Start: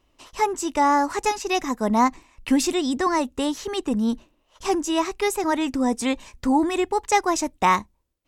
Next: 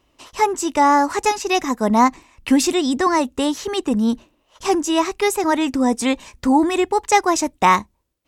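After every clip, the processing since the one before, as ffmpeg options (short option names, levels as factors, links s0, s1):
-af "highpass=f=54:p=1,volume=1.68"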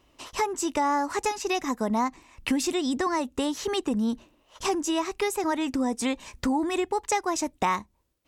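-af "acompressor=threshold=0.0501:ratio=3"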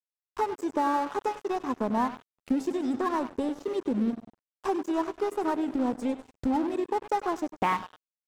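-af "aecho=1:1:99|198|297|396|495|594:0.266|0.149|0.0834|0.0467|0.0262|0.0147,afwtdn=0.0398,aeval=exprs='sgn(val(0))*max(abs(val(0))-0.01,0)':c=same"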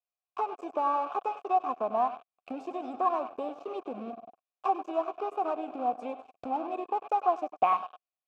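-filter_complex "[0:a]asplit=2[s0][s1];[s1]acompressor=threshold=0.02:ratio=6,volume=1[s2];[s0][s2]amix=inputs=2:normalize=0,asplit=3[s3][s4][s5];[s3]bandpass=f=730:t=q:w=8,volume=1[s6];[s4]bandpass=f=1090:t=q:w=8,volume=0.501[s7];[s5]bandpass=f=2440:t=q:w=8,volume=0.355[s8];[s6][s7][s8]amix=inputs=3:normalize=0,volume=2.24"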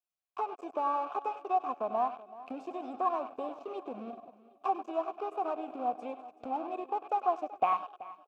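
-af "aecho=1:1:380|760|1140:0.126|0.0466|0.0172,volume=0.708"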